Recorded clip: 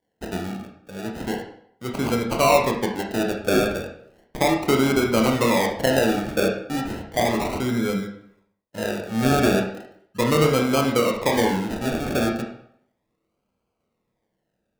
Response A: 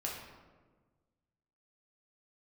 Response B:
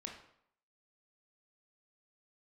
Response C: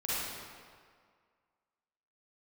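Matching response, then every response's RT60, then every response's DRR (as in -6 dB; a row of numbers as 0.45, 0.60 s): B; 1.4, 0.70, 1.9 s; -3.5, 1.0, -10.0 dB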